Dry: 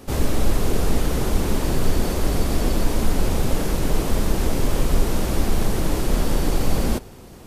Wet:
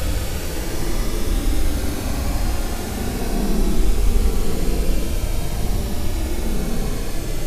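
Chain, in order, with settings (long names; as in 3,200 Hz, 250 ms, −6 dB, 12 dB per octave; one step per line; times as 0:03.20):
rotating-speaker cabinet horn 6 Hz, later 1.1 Hz, at 0:04.38
on a send: delay with a high-pass on its return 101 ms, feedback 83%, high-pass 1,900 Hz, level −7.5 dB
on the sum: extreme stretch with random phases 24×, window 0.05 s, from 0:05.34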